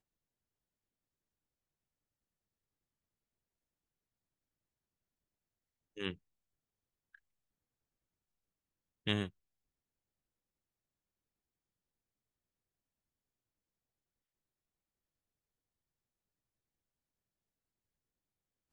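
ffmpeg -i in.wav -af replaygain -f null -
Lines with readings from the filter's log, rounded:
track_gain = +64.0 dB
track_peak = 0.105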